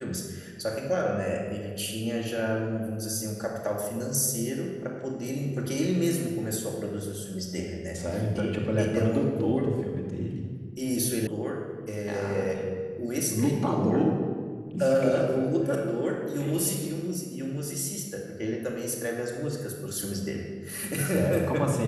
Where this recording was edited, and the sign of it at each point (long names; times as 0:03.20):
0:11.27: cut off before it has died away